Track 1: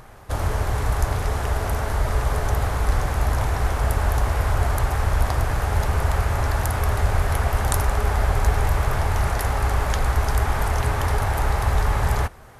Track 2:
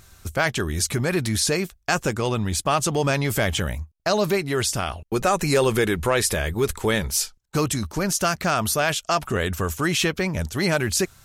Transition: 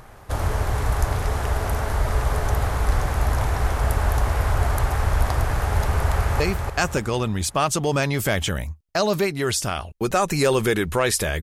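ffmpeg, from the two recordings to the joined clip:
-filter_complex "[0:a]apad=whole_dur=11.42,atrim=end=11.42,atrim=end=6.402[a];[1:a]atrim=start=1.508:end=6.53[b];[a][b]acrossfade=d=0.004:c1=hsin:c2=hsin,asplit=2[c][d];[d]afade=t=in:st=6.07:d=0.01,afade=t=out:st=6.4:d=0.01,aecho=0:1:290|580|870|1160|1450|1740:0.595662|0.268048|0.120622|0.0542797|0.0244259|0.0109916[e];[c][e]amix=inputs=2:normalize=0"

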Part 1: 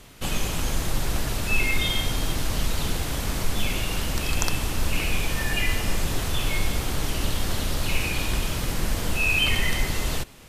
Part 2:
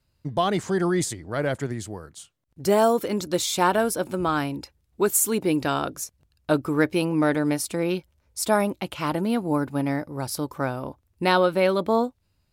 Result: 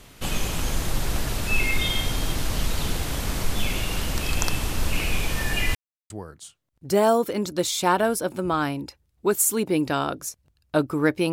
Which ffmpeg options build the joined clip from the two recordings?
-filter_complex "[0:a]apad=whole_dur=11.32,atrim=end=11.32,asplit=2[a][b];[a]atrim=end=5.75,asetpts=PTS-STARTPTS,afade=t=out:st=5.746:d=0.004:c=hsin[c];[b]atrim=start=5.75:end=6.1,asetpts=PTS-STARTPTS,volume=0[d];[1:a]atrim=start=1.85:end=7.07,asetpts=PTS-STARTPTS,afade=t=in:d=0.004:c=hsin[e];[c][d][e]concat=n=3:v=0:a=1"

